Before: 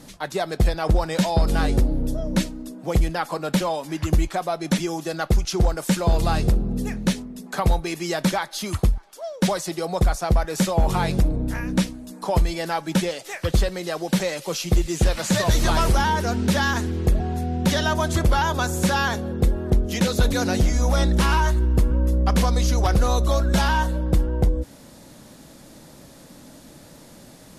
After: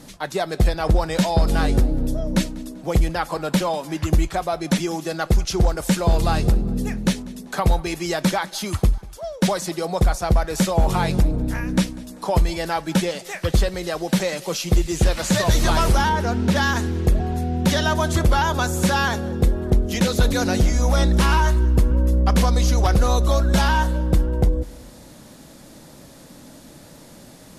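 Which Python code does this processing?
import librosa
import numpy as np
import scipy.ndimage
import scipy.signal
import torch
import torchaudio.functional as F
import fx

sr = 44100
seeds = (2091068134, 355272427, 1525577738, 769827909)

p1 = fx.high_shelf(x, sr, hz=4600.0, db=-8.5, at=(16.09, 16.56))
p2 = p1 + fx.echo_feedback(p1, sr, ms=195, feedback_pct=39, wet_db=-22, dry=0)
y = F.gain(torch.from_numpy(p2), 1.5).numpy()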